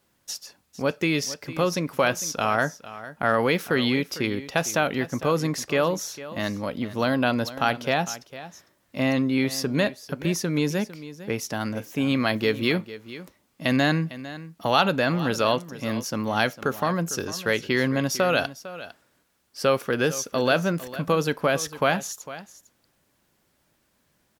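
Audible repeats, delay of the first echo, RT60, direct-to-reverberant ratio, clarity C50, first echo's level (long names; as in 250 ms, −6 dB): 1, 453 ms, no reverb audible, no reverb audible, no reverb audible, −15.5 dB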